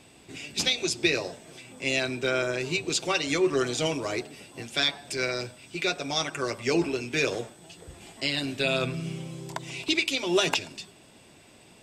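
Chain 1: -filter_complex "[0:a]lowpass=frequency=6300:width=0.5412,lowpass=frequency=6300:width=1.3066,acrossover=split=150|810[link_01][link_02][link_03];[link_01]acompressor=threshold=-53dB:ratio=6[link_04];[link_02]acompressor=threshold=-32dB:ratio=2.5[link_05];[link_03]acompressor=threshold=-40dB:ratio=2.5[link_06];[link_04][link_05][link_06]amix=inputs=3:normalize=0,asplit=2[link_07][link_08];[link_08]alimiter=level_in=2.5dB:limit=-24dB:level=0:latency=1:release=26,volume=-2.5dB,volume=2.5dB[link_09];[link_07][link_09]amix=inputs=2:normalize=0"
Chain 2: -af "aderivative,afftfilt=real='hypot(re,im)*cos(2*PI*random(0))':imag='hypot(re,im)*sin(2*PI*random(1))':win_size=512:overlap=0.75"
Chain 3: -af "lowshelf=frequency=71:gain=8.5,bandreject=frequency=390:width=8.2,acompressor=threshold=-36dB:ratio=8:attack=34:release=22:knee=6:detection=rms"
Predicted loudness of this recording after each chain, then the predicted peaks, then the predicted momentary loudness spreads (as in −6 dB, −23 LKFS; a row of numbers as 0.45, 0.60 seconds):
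−28.5, −41.5, −35.5 LKFS; −13.0, −21.0, −16.5 dBFS; 13, 18, 12 LU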